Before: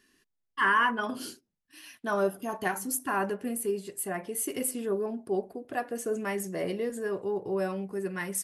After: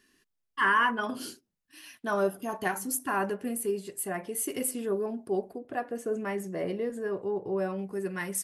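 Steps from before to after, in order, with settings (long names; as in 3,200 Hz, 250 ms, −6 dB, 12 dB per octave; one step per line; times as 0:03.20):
0:05.58–0:07.79: high-shelf EQ 3,000 Hz −9.5 dB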